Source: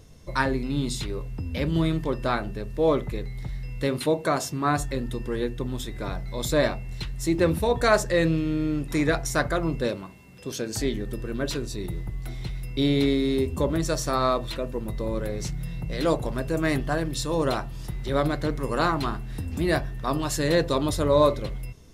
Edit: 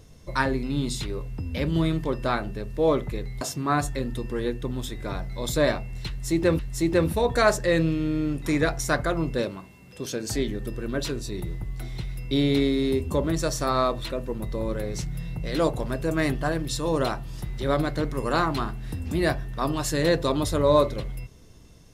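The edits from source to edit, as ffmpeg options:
-filter_complex "[0:a]asplit=3[a][b][c];[a]atrim=end=3.412[d];[b]atrim=start=4.368:end=7.552[e];[c]atrim=start=7.048[f];[d][e]acrossfade=d=0.004:c1=hsin:c2=hsin[g];[g][f]acrossfade=d=0.004:c1=hsin:c2=hsin"

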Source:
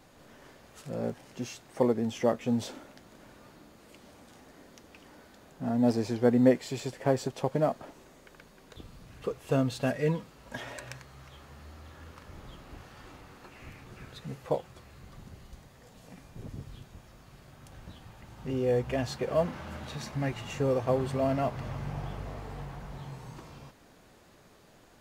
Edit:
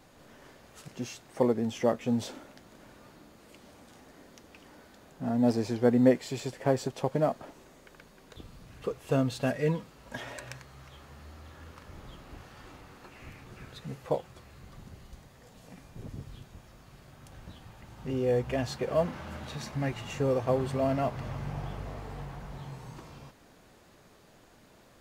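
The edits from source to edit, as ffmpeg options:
-filter_complex "[0:a]asplit=2[a][b];[a]atrim=end=0.882[c];[b]atrim=start=1.278[d];[c][d]acrossfade=d=0.004:c1=hsin:c2=hsin"

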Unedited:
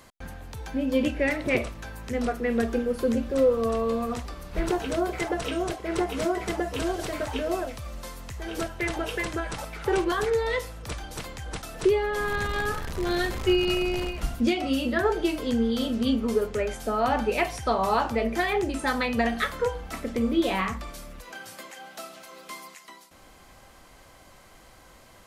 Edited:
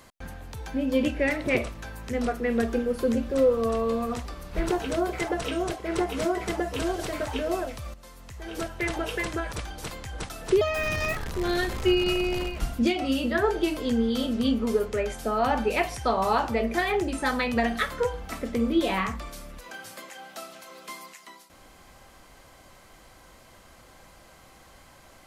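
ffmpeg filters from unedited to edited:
-filter_complex "[0:a]asplit=5[a][b][c][d][e];[a]atrim=end=7.94,asetpts=PTS-STARTPTS,afade=t=out:st=7.936:d=0.004:c=hsin:silence=0.237137[f];[b]atrim=start=7.94:end=9.522,asetpts=PTS-STARTPTS,afade=t=in:d=0.88:silence=0.237137[g];[c]atrim=start=10.848:end=11.944[h];[d]atrim=start=11.94:end=12.78,asetpts=PTS-STARTPTS,asetrate=66591,aresample=44100,atrim=end_sample=24532,asetpts=PTS-STARTPTS[i];[e]atrim=start=12.776[j];[f][g]concat=n=2:v=0:a=1[k];[k][h]acrossfade=d=0.004:c1=hsin:c2=hsin[l];[l][i]acrossfade=d=0.004:c1=hsin:c2=hsin[m];[m][j]acrossfade=d=0.004:c1=hsin:c2=hsin"

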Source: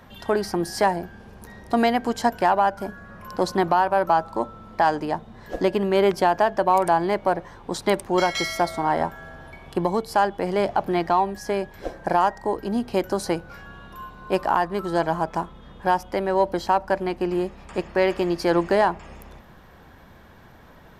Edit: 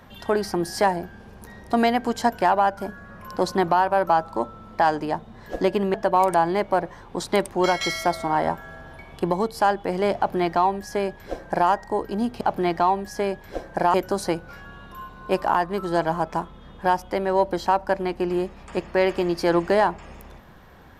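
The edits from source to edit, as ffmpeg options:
-filter_complex "[0:a]asplit=4[a][b][c][d];[a]atrim=end=5.942[e];[b]atrim=start=6.478:end=12.952[f];[c]atrim=start=10.708:end=12.242[g];[d]atrim=start=12.948[h];[e][f]acrossfade=d=0.004:c1=hsin:c2=hsin[i];[i][g]acrossfade=d=0.004:c1=hsin:c2=hsin[j];[j][h]acrossfade=d=0.004:c1=hsin:c2=hsin"

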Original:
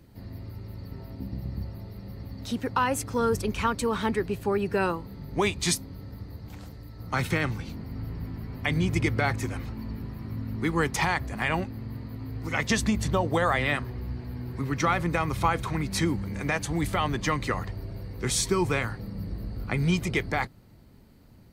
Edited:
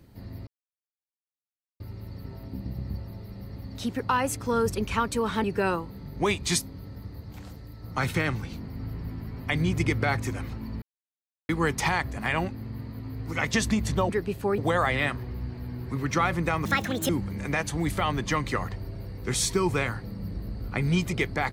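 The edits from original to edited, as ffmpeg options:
-filter_complex "[0:a]asplit=9[a][b][c][d][e][f][g][h][i];[a]atrim=end=0.47,asetpts=PTS-STARTPTS,afade=t=out:st=0.466:d=0.004:c=hsin,apad=pad_dur=1.33[j];[b]atrim=start=0.47:end=4.112,asetpts=PTS-STARTPTS,afade=t=in:d=0.004:c=hsin[k];[c]atrim=start=4.598:end=9.98,asetpts=PTS-STARTPTS,afade=t=out:st=5.378:d=0.004:c=hsin[l];[d]atrim=start=9.98:end=10.65,asetpts=PTS-STARTPTS,volume=0[m];[e]atrim=start=10.65:end=13.252,asetpts=PTS-STARTPTS,afade=t=in:d=0.004:c=hsin[n];[f]atrim=start=4.108:end=4.602[o];[g]atrim=start=13.248:end=15.324[p];[h]atrim=start=15.32:end=16.05,asetpts=PTS-STARTPTS,asetrate=72765,aresample=44100[q];[i]atrim=start=16.046[r];[j][k]concat=n=2:v=0:a=1[s];[l][m][n]concat=n=3:v=0:a=1[t];[s][t]acrossfade=d=0.004:c1=hsin:c2=hsin[u];[u][o]acrossfade=d=0.004:c1=hsin:c2=hsin[v];[v][p]acrossfade=d=0.004:c1=hsin:c2=hsin[w];[w][q]acrossfade=d=0.004:c1=hsin:c2=hsin[x];[x][r]acrossfade=d=0.004:c1=hsin:c2=hsin"

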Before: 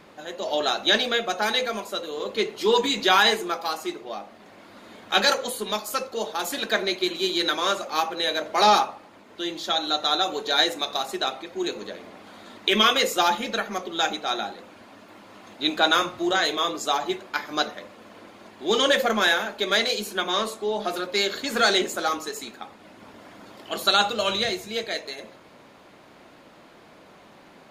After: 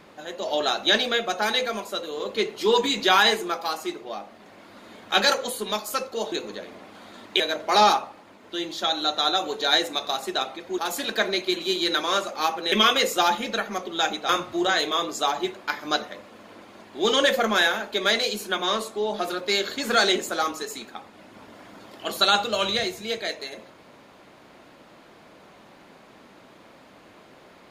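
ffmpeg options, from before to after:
-filter_complex "[0:a]asplit=6[a][b][c][d][e][f];[a]atrim=end=6.322[g];[b]atrim=start=11.638:end=12.722[h];[c]atrim=start=8.258:end=11.642[i];[d]atrim=start=6.318:end=8.262[j];[e]atrim=start=12.718:end=14.292[k];[f]atrim=start=15.948[l];[g][h]acrossfade=d=0.004:c1=hsin:c2=hsin[m];[m][i]acrossfade=d=0.004:c1=hsin:c2=hsin[n];[n][j]acrossfade=d=0.004:c1=hsin:c2=hsin[o];[o][k]acrossfade=d=0.004:c1=hsin:c2=hsin[p];[p][l]acrossfade=d=0.004:c1=hsin:c2=hsin"

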